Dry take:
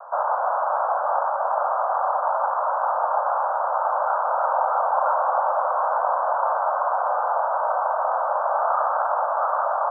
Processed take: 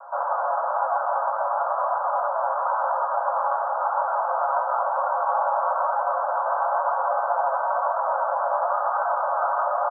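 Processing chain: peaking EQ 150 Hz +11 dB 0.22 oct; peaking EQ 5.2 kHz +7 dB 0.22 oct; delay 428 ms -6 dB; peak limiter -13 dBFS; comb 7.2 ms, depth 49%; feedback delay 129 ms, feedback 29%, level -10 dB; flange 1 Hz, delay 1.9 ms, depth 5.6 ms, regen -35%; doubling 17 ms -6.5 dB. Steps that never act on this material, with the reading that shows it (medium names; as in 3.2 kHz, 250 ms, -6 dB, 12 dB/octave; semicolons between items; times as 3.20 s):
peaking EQ 150 Hz: input has nothing below 430 Hz; peaking EQ 5.2 kHz: input has nothing above 1.7 kHz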